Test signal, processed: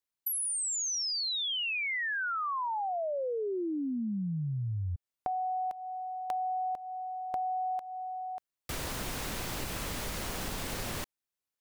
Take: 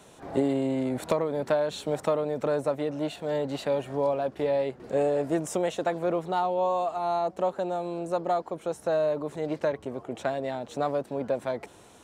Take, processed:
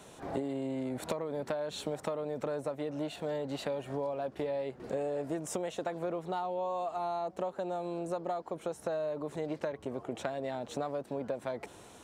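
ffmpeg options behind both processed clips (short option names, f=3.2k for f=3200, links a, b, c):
-af "acompressor=threshold=-32dB:ratio=6"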